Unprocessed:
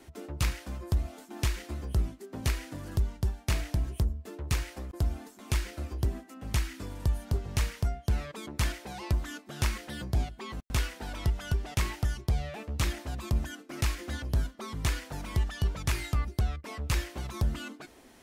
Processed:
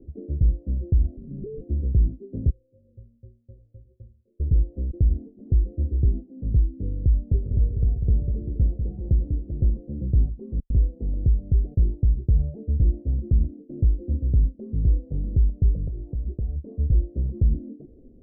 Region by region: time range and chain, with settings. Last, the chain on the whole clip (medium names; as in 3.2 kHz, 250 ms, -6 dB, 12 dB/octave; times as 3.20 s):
1.17–1.61 s: compression 4:1, threshold -39 dBFS + frequency shift -490 Hz + transient shaper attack +1 dB, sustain +12 dB
2.50–4.40 s: cascade formant filter e + bass shelf 160 Hz +6.5 dB + inharmonic resonator 110 Hz, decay 0.37 s, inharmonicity 0.03
7.23–9.79 s: bass shelf 220 Hz -4.5 dB + two-band feedback delay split 620 Hz, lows 195 ms, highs 114 ms, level -7 dB
15.87–16.56 s: CVSD coder 64 kbps + peaking EQ 1.2 kHz +11.5 dB 2.6 oct + compression 12:1, threshold -34 dBFS
whole clip: elliptic low-pass 510 Hz, stop band 70 dB; tilt EQ -3.5 dB/octave; peak limiter -12 dBFS